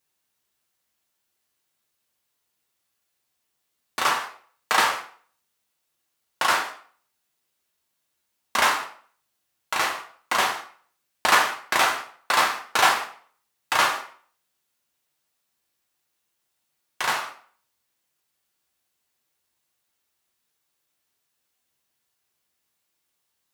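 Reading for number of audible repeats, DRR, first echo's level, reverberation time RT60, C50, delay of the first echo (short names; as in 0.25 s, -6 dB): none, 1.0 dB, none, 0.50 s, 9.0 dB, none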